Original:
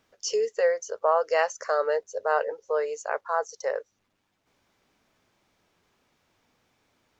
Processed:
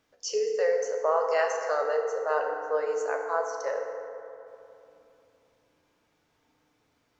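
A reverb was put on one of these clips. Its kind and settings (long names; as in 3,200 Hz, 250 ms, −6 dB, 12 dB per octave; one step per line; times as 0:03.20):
feedback delay network reverb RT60 2.9 s, low-frequency decay 1.2×, high-frequency decay 0.4×, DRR 1.5 dB
level −4 dB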